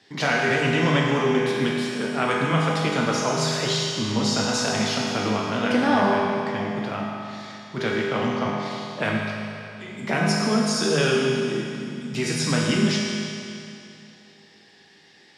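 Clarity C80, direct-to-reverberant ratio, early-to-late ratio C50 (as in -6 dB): 0.0 dB, -4.5 dB, -1.0 dB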